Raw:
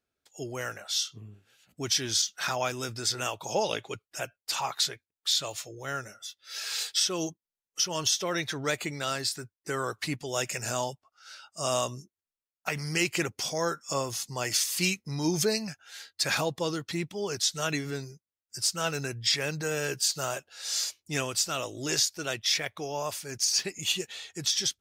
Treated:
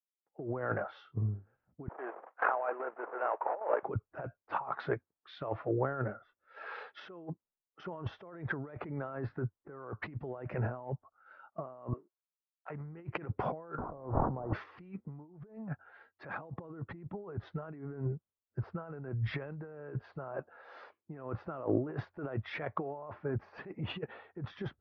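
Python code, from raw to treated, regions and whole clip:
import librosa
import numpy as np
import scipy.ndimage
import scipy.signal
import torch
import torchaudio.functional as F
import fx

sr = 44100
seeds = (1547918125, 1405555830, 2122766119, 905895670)

y = fx.chain(x, sr, fx.cvsd(bps=16000),
    fx.highpass(hz=480.0, slope=24),
    fx.level_steps(step_db=9), at=(1.88, 3.83))
y = fx.chain(y, sr, fx.highpass(hz=360.0, slope=24),
    fx.tilt_shelf(db=-8.0, hz=1200.0), at=(11.93, 12.7))
y = fx.chain(y, sr, fx.delta_mod(bps=16000, step_db=-35.0),
    fx.lowpass(hz=1000.0, slope=24),
    fx.pre_swell(db_per_s=43.0), at=(13.78, 14.53))
y = scipy.signal.sosfilt(scipy.signal.cheby2(4, 80, 7100.0, 'lowpass', fs=sr, output='sos'), y)
y = fx.over_compress(y, sr, threshold_db=-42.0, ratio=-1.0)
y = fx.band_widen(y, sr, depth_pct=100)
y = F.gain(torch.from_numpy(y), 3.0).numpy()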